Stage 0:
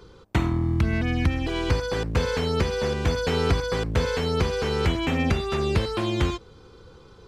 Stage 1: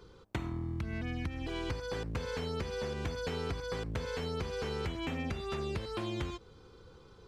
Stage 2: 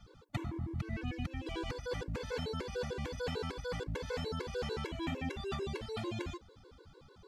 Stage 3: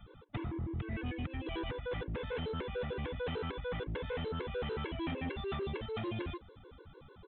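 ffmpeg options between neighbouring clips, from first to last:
ffmpeg -i in.wav -af "acompressor=threshold=-26dB:ratio=6,volume=-7dB" out.wav
ffmpeg -i in.wav -af "afftfilt=real='re*gt(sin(2*PI*6.7*pts/sr)*(1-2*mod(floor(b*sr/1024/290),2)),0)':imag='im*gt(sin(2*PI*6.7*pts/sr)*(1-2*mod(floor(b*sr/1024/290),2)),0)':win_size=1024:overlap=0.75,volume=1.5dB" out.wav
ffmpeg -i in.wav -af "asoftclip=type=tanh:threshold=-34.5dB,aresample=8000,aresample=44100,volume=3dB" out.wav

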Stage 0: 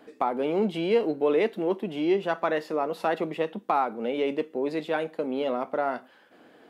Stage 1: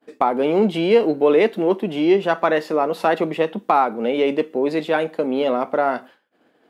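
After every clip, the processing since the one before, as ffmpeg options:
ffmpeg -i in.wav -af "agate=range=-33dB:threshold=-44dB:ratio=3:detection=peak,volume=8dB" out.wav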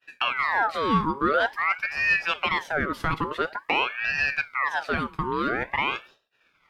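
ffmpeg -i in.wav -filter_complex "[0:a]asplit=2[link_01][link_02];[link_02]alimiter=limit=-13.5dB:level=0:latency=1:release=145,volume=-2dB[link_03];[link_01][link_03]amix=inputs=2:normalize=0,aeval=exprs='val(0)*sin(2*PI*1400*n/s+1400*0.55/0.48*sin(2*PI*0.48*n/s))':channel_layout=same,volume=-7.5dB" out.wav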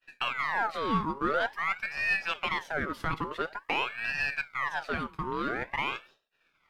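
ffmpeg -i in.wav -af "aeval=exprs='if(lt(val(0),0),0.708*val(0),val(0))':channel_layout=same,volume=-4.5dB" out.wav

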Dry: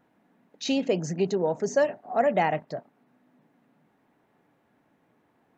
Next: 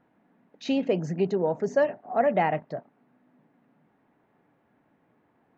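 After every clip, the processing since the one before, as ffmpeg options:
ffmpeg -i in.wav -af "bass=frequency=250:gain=1,treble=frequency=4000:gain=-14" out.wav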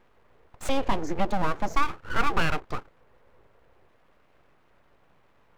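ffmpeg -i in.wav -filter_complex "[0:a]asplit=2[link_01][link_02];[link_02]acompressor=threshold=-31dB:ratio=6,volume=1dB[link_03];[link_01][link_03]amix=inputs=2:normalize=0,aeval=exprs='abs(val(0))':channel_layout=same" out.wav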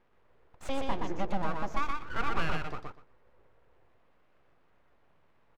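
ffmpeg -i in.wav -af "highshelf=frequency=7700:gain=-9.5,aecho=1:1:122|244|366:0.668|0.107|0.0171,volume=-7.5dB" out.wav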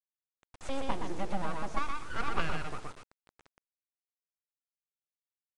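ffmpeg -i in.wav -af "aeval=exprs='0.168*(cos(1*acos(clip(val(0)/0.168,-1,1)))-cos(1*PI/2))+0.0237*(cos(3*acos(clip(val(0)/0.168,-1,1)))-cos(3*PI/2))+0.0106*(cos(4*acos(clip(val(0)/0.168,-1,1)))-cos(4*PI/2))+0.00841*(cos(5*acos(clip(val(0)/0.168,-1,1)))-cos(5*PI/2))':channel_layout=same,acrusher=bits=6:dc=4:mix=0:aa=0.000001,aresample=22050,aresample=44100,volume=2.5dB" out.wav

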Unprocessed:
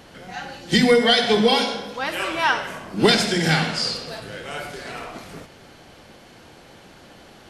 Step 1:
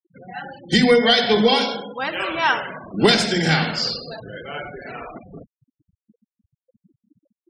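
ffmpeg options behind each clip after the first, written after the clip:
ffmpeg -i in.wav -af "afftfilt=real='re*gte(hypot(re,im),0.0316)':imag='im*gte(hypot(re,im),0.0316)':win_size=1024:overlap=0.75,volume=1dB" out.wav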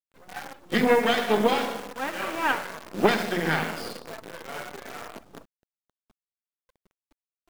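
ffmpeg -i in.wav -filter_complex "[0:a]aeval=exprs='max(val(0),0)':channel_layout=same,acrossover=split=160 2700:gain=0.141 1 0.141[link_01][link_02][link_03];[link_01][link_02][link_03]amix=inputs=3:normalize=0,acrusher=bits=7:dc=4:mix=0:aa=0.000001" out.wav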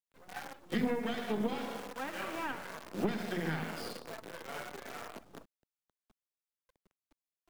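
ffmpeg -i in.wav -filter_complex "[0:a]acrossover=split=280[link_01][link_02];[link_02]acompressor=threshold=-30dB:ratio=10[link_03];[link_01][link_03]amix=inputs=2:normalize=0,volume=-5.5dB" out.wav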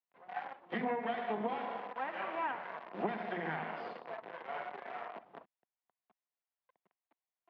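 ffmpeg -i in.wav -af "highpass=210,equalizer=frequency=280:width_type=q:width=4:gain=-5,equalizer=frequency=720:width_type=q:width=4:gain=9,equalizer=frequency=1000:width_type=q:width=4:gain=7,equalizer=frequency=1900:width_type=q:width=4:gain=4,lowpass=frequency=3000:width=0.5412,lowpass=frequency=3000:width=1.3066,volume=-3dB" out.wav

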